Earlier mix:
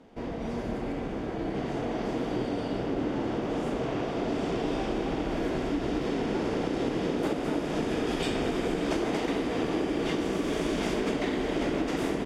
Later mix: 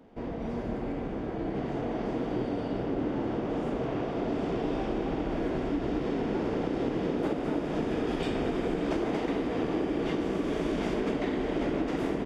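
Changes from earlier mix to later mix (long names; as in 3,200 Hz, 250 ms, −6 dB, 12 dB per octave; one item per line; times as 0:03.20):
background: add head-to-tape spacing loss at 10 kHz 22 dB
master: remove high-frequency loss of the air 68 metres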